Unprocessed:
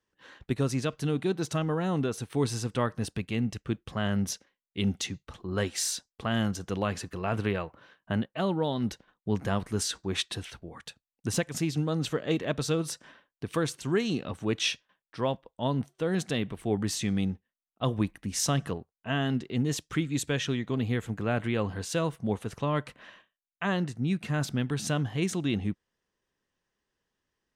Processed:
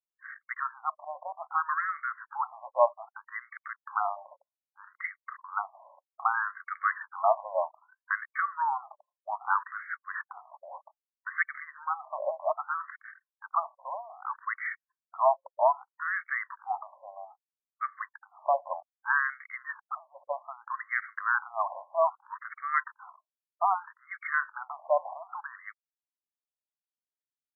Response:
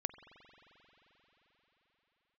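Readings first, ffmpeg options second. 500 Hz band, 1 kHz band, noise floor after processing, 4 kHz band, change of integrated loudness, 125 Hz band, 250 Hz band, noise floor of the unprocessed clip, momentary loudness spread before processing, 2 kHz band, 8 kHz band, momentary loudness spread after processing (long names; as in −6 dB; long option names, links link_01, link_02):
−1.5 dB, +8.5 dB, below −85 dBFS, below −40 dB, −1.5 dB, below −40 dB, below −40 dB, below −85 dBFS, 7 LU, +5.5 dB, below −40 dB, 17 LU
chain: -af "anlmdn=0.00398,acontrast=55,afftfilt=real='re*between(b*sr/1024,770*pow(1600/770,0.5+0.5*sin(2*PI*0.63*pts/sr))/1.41,770*pow(1600/770,0.5+0.5*sin(2*PI*0.63*pts/sr))*1.41)':imag='im*between(b*sr/1024,770*pow(1600/770,0.5+0.5*sin(2*PI*0.63*pts/sr))/1.41,770*pow(1600/770,0.5+0.5*sin(2*PI*0.63*pts/sr))*1.41)':win_size=1024:overlap=0.75,volume=5dB"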